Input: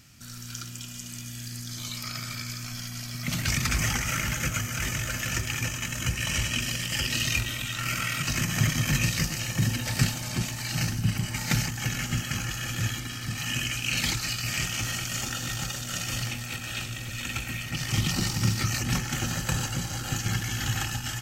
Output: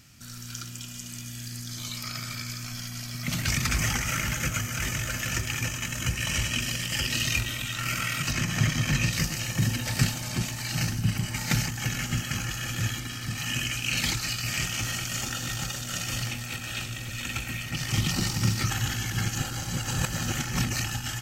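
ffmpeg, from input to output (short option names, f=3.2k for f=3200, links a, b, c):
-filter_complex "[0:a]asettb=1/sr,asplit=3[a][b][c];[a]atrim=end=8.314[d];[b]atrim=start=8.31:end=9.13,asetpts=PTS-STARTPTS,afade=t=in:d=0.004:c=qsin,afade=t=out:st=0.816:d=0.004:c=qsin,acrossover=split=7000[e][f];[f]acompressor=threshold=-43dB:ratio=4:attack=1:release=60[g];[e][g]amix=inputs=2:normalize=0[h];[c]atrim=start=9.126[i];[d][h]acrossfade=d=0.004:c1=hsin:c2=qsin[j];[j][i]acrossfade=d=0.004:c1=qsin:c2=hsin,asplit=3[k][l][m];[k]atrim=end=18.702[n];[l]atrim=start=18.698:end=20.842,asetpts=PTS-STARTPTS,areverse[o];[m]atrim=start=20.838[p];[n][o]acrossfade=d=0.004:c1=hsin:c2=hsin[q];[q][p]acrossfade=d=0.004:c1=hsin:c2=hsin"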